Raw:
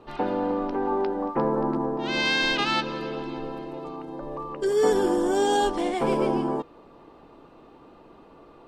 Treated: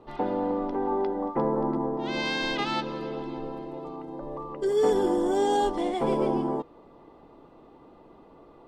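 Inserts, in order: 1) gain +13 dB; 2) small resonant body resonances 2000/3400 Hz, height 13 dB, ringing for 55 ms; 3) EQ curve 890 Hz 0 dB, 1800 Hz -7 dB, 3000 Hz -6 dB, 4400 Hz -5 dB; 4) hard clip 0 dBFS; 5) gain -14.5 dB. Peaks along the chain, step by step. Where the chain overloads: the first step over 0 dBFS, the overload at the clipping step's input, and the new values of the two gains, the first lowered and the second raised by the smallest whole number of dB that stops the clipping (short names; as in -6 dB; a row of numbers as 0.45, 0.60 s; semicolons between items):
+3.0, +3.0, +3.0, 0.0, -14.5 dBFS; step 1, 3.0 dB; step 1 +10 dB, step 5 -11.5 dB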